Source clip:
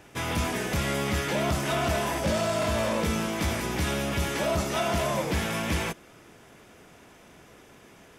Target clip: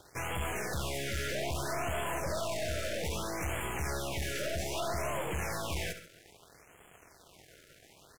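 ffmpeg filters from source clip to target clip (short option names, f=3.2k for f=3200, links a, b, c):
-af "equalizer=f=230:w=2.6:g=-15,acrusher=bits=7:mix=0:aa=0.5,aeval=exprs='(tanh(39.8*val(0)+0.45)-tanh(0.45))/39.8':c=same,aecho=1:1:69|138:0.282|0.168,afftfilt=real='re*(1-between(b*sr/1024,910*pow(4900/910,0.5+0.5*sin(2*PI*0.62*pts/sr))/1.41,910*pow(4900/910,0.5+0.5*sin(2*PI*0.62*pts/sr))*1.41))':imag='im*(1-between(b*sr/1024,910*pow(4900/910,0.5+0.5*sin(2*PI*0.62*pts/sr))/1.41,910*pow(4900/910,0.5+0.5*sin(2*PI*0.62*pts/sr))*1.41))':win_size=1024:overlap=0.75"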